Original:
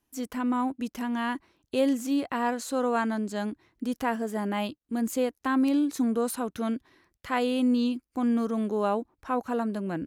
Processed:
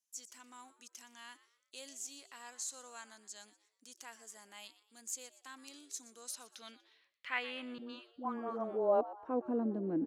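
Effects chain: band-pass sweep 6.8 kHz -> 310 Hz, 6.17–9.55 s; 7.78–9.01 s: phase dispersion highs, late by 113 ms, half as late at 650 Hz; frequency-shifting echo 120 ms, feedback 38%, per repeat +110 Hz, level -17 dB; trim +1 dB

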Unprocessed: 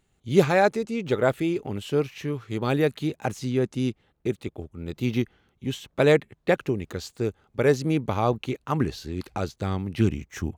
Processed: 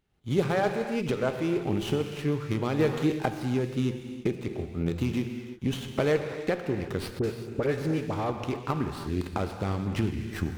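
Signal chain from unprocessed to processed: recorder AGC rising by 26 dB/s; gated-style reverb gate 370 ms flat, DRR 5.5 dB; 2.79–3.30 s: waveshaping leveller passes 1; 7.19–8.30 s: phase dispersion highs, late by 48 ms, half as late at 1.4 kHz; sliding maximum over 5 samples; trim -7.5 dB

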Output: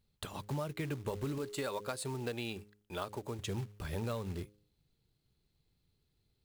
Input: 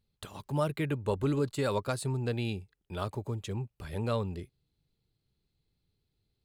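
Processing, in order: 1.38–3.39 s: peaking EQ 99 Hz -11 dB 2.5 oct; de-hum 103.6 Hz, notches 5; compression 8:1, threshold -36 dBFS, peak gain reduction 12 dB; short-mantissa float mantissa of 2-bit; trim +2 dB

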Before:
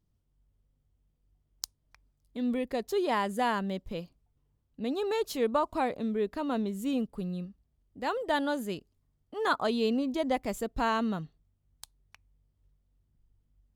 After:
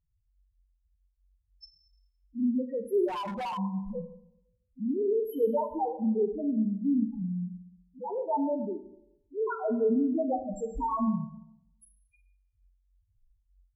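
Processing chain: peaking EQ 12 kHz +10.5 dB 0.85 oct; loudest bins only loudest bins 1; Schroeder reverb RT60 0.82 s, combs from 28 ms, DRR 7.5 dB; 3.08–3.58 s: hard clipper -39.5 dBFS, distortion -19 dB; trim +7.5 dB; Vorbis 128 kbps 32 kHz

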